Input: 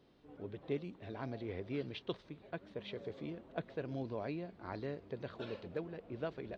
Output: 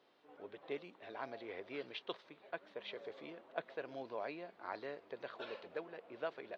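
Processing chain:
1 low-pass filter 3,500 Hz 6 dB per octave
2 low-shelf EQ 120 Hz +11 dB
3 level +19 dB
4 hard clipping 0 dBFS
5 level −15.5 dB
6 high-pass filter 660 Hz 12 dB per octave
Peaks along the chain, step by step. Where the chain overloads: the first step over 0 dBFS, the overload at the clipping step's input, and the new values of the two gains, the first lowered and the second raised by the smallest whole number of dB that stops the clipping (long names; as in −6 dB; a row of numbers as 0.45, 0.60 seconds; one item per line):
−24.5, −24.0, −5.0, −5.0, −20.5, −24.0 dBFS
no step passes full scale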